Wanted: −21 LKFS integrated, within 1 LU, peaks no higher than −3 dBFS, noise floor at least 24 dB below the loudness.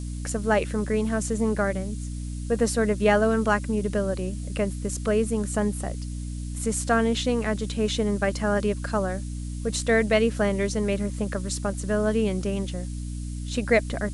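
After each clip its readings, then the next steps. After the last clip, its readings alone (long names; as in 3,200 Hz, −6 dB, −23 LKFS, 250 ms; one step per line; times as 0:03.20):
mains hum 60 Hz; hum harmonics up to 300 Hz; level of the hum −30 dBFS; background noise floor −33 dBFS; target noise floor −50 dBFS; integrated loudness −26.0 LKFS; sample peak −8.0 dBFS; target loudness −21.0 LKFS
→ mains-hum notches 60/120/180/240/300 Hz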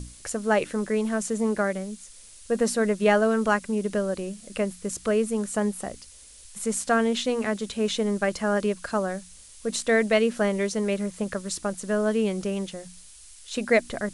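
mains hum none found; background noise floor −49 dBFS; target noise floor −50 dBFS
→ noise reduction from a noise print 6 dB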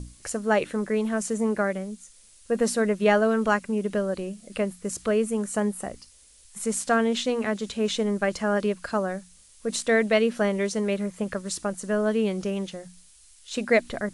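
background noise floor −54 dBFS; integrated loudness −26.0 LKFS; sample peak −8.5 dBFS; target loudness −21.0 LKFS
→ level +5 dB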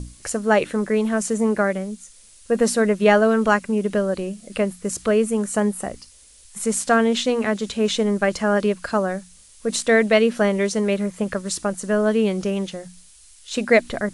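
integrated loudness −21.0 LKFS; sample peak −3.5 dBFS; background noise floor −49 dBFS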